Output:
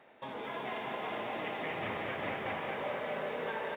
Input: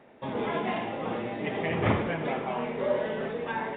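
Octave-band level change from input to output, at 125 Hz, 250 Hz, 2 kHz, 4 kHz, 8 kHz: -15.0 dB, -12.0 dB, -3.5 dB, -2.5 dB, n/a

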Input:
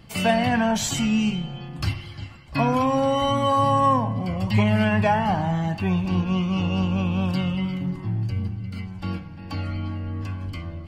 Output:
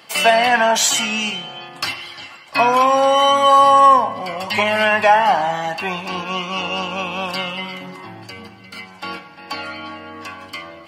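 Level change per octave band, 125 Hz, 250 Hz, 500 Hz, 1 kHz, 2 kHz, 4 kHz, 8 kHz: -14.0 dB, -7.0 dB, +7.0 dB, +10.0 dB, +11.0 dB, +11.0 dB, n/a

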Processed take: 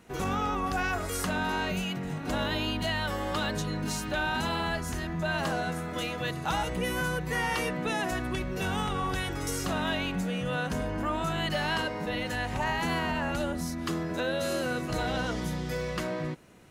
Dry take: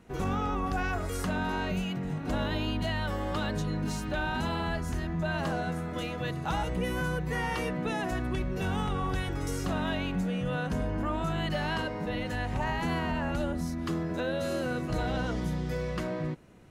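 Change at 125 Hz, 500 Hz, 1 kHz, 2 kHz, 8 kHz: -2.0, +1.0, +2.5, +3.5, +7.0 dB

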